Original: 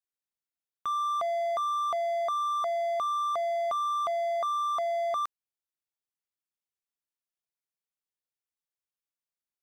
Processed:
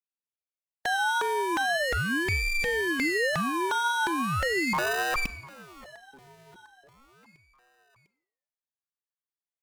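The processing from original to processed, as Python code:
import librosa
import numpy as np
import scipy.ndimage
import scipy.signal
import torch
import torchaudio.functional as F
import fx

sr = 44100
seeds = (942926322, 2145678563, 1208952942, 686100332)

p1 = fx.spec_flatten(x, sr, power=0.67)
p2 = fx.peak_eq(p1, sr, hz=1400.0, db=12.5, octaves=0.28)
p3 = fx.fuzz(p2, sr, gain_db=44.0, gate_db=-45.0)
p4 = p2 + (p3 * 10.0 ** (-4.0 / 20.0))
p5 = fx.wow_flutter(p4, sr, seeds[0], rate_hz=2.1, depth_cents=19.0)
p6 = fx.sample_hold(p5, sr, seeds[1], rate_hz=1100.0, jitter_pct=0, at=(4.73, 5.16))
p7 = p6 + fx.echo_feedback(p6, sr, ms=701, feedback_pct=53, wet_db=-21, dry=0)
p8 = fx.rev_schroeder(p7, sr, rt60_s=0.8, comb_ms=33, drr_db=15.0)
p9 = fx.ring_lfo(p8, sr, carrier_hz=710.0, swing_pct=65, hz=0.39)
y = p9 * 10.0 ** (-8.5 / 20.0)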